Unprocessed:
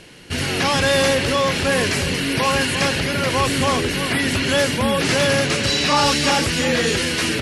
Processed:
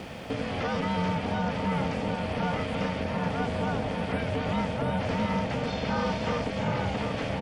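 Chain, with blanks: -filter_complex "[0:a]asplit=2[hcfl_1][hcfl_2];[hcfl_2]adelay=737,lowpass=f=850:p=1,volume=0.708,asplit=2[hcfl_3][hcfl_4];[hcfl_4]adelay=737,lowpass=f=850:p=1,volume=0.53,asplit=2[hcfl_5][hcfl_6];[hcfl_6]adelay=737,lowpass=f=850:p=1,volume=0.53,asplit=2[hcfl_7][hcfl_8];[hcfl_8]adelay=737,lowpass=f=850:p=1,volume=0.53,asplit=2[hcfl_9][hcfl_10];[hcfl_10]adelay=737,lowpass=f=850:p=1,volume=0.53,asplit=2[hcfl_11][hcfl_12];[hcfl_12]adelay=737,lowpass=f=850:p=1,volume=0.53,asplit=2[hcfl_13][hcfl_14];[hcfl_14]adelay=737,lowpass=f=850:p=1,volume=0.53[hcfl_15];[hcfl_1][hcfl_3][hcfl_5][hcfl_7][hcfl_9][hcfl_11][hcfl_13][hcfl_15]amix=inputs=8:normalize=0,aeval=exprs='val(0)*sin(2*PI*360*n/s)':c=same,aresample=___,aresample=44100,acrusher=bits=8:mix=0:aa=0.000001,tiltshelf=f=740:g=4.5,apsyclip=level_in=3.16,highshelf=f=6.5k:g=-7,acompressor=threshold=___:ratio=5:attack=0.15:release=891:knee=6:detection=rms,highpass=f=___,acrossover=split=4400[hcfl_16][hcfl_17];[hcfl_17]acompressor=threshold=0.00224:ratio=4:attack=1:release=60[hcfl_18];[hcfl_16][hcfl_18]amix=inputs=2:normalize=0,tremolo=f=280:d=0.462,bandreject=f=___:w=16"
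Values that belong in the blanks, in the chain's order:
22050, 0.0891, 74, 3.9k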